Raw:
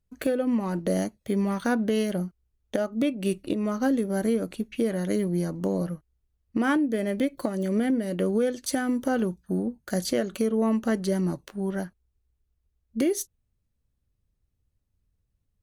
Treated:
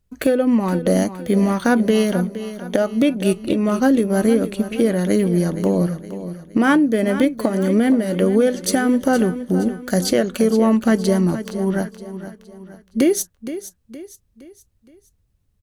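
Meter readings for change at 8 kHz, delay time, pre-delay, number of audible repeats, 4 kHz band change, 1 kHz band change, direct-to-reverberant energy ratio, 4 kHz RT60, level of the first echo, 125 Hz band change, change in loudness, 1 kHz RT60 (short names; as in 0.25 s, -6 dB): +9.0 dB, 0.467 s, none, 4, +9.0 dB, +9.0 dB, none, none, -12.5 dB, +9.0 dB, +8.5 dB, none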